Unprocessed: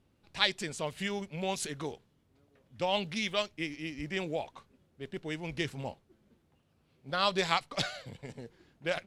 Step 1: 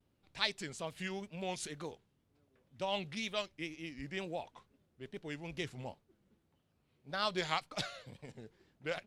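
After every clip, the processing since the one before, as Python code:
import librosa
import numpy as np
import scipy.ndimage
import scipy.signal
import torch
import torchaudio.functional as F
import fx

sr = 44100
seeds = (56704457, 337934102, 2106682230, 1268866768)

y = fx.wow_flutter(x, sr, seeds[0], rate_hz=2.1, depth_cents=120.0)
y = y * librosa.db_to_amplitude(-6.0)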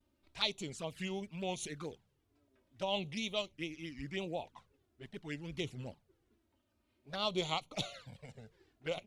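y = fx.env_flanger(x, sr, rest_ms=3.4, full_db=-37.0)
y = y * librosa.db_to_amplitude(2.5)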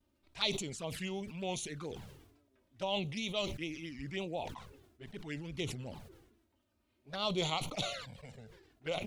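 y = fx.sustainer(x, sr, db_per_s=57.0)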